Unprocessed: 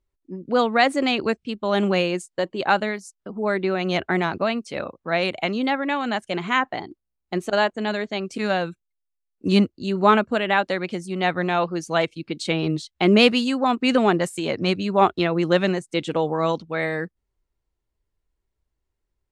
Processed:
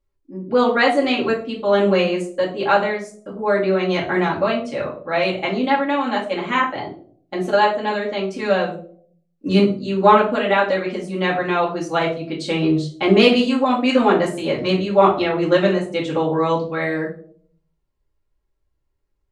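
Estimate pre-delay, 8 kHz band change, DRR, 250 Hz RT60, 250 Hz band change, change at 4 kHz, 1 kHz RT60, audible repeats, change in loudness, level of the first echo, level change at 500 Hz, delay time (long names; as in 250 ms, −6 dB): 3 ms, can't be measured, −5.0 dB, 0.70 s, +2.5 dB, +1.0 dB, 0.40 s, no echo audible, +3.5 dB, no echo audible, +4.5 dB, no echo audible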